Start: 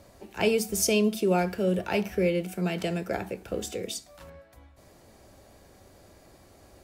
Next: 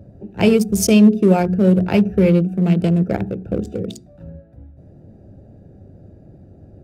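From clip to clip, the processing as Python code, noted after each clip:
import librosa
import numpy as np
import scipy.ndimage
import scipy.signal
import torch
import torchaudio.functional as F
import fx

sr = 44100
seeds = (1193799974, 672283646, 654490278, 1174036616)

y = fx.wiener(x, sr, points=41)
y = fx.peak_eq(y, sr, hz=140.0, db=13.5, octaves=2.0)
y = fx.hum_notches(y, sr, base_hz=60, count=7)
y = y * librosa.db_to_amplitude(6.5)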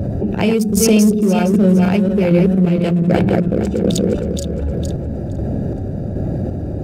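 y = fx.reverse_delay_fb(x, sr, ms=232, feedback_pct=47, wet_db=-4)
y = fx.chopper(y, sr, hz=1.3, depth_pct=65, duty_pct=45)
y = fx.env_flatten(y, sr, amount_pct=70)
y = y * librosa.db_to_amplitude(-3.0)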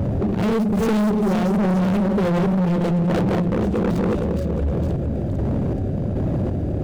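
y = scipy.ndimage.median_filter(x, 25, mode='constant')
y = np.clip(y, -10.0 ** (-17.0 / 20.0), 10.0 ** (-17.0 / 20.0))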